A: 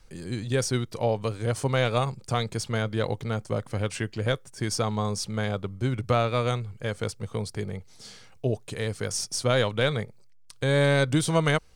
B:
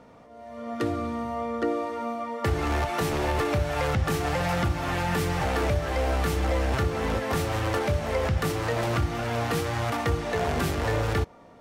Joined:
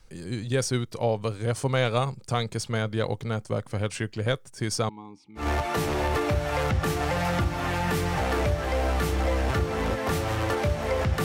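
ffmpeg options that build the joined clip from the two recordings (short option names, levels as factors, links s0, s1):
-filter_complex "[0:a]asettb=1/sr,asplit=3[s0][s1][s2];[s0]atrim=end=4.894[s3];[s1]atrim=start=4.89:end=5.47,asetpts=PTS-STARTPTS,afade=t=in:d=0.004:c=qsin,afade=t=out:st=0.576:d=0.004:c=qsin,asplit=3[s4][s5][s6];[s4]bandpass=f=300:t=q:w=8,volume=1[s7];[s5]bandpass=f=870:t=q:w=8,volume=0.501[s8];[s6]bandpass=f=2240:t=q:w=8,volume=0.355[s9];[s7][s8][s9]amix=inputs=3:normalize=0[s10];[s2]atrim=start=5.466[s11];[s3][s10]acrossfade=d=0.004:c1=hsin:c2=qsin[s12];[s12][s11]acrossfade=d=0.004:c1=qsin:c2=hsin,apad=whole_dur=11.24,atrim=end=11.24,atrim=end=5.47,asetpts=PTS-STARTPTS[s13];[1:a]atrim=start=2.59:end=8.48,asetpts=PTS-STARTPTS[s14];[s13][s14]acrossfade=d=0.12:c1=tri:c2=tri"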